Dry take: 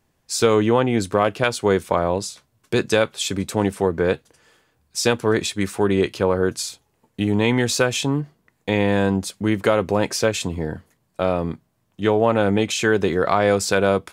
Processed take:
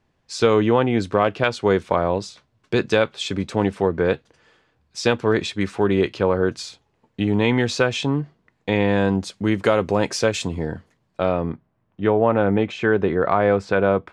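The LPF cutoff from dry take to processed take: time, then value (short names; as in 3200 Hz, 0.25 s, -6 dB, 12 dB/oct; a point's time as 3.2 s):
8.88 s 4400 Hz
9.71 s 7300 Hz
10.55 s 7300 Hz
11.28 s 4000 Hz
11.52 s 2000 Hz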